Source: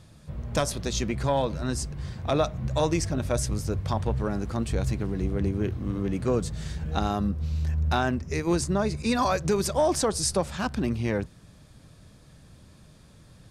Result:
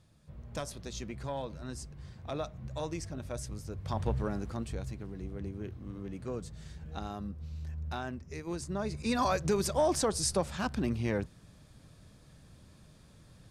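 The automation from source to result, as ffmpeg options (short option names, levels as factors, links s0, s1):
-af "volume=1.68,afade=t=in:st=3.77:d=0.3:silence=0.375837,afade=t=out:st=4.07:d=0.82:silence=0.354813,afade=t=in:st=8.59:d=0.66:silence=0.375837"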